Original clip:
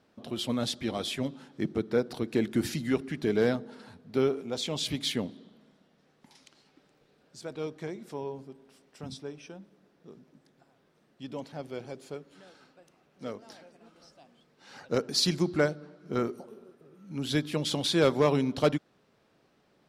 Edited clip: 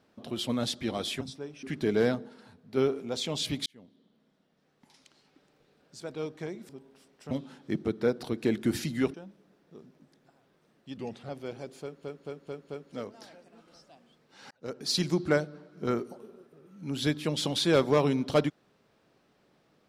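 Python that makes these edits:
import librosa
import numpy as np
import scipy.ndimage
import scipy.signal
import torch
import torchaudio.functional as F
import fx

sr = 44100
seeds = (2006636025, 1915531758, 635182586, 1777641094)

y = fx.edit(x, sr, fx.swap(start_s=1.21, length_s=1.83, other_s=9.05, other_length_s=0.42),
    fx.clip_gain(start_s=3.69, length_s=0.49, db=-4.5),
    fx.fade_in_span(start_s=5.07, length_s=2.53, curve='qsin'),
    fx.cut(start_s=8.1, length_s=0.33),
    fx.speed_span(start_s=11.3, length_s=0.27, speed=0.85),
    fx.stutter_over(start_s=12.1, slice_s=0.22, count=5),
    fx.fade_in_span(start_s=14.79, length_s=0.58), tone=tone)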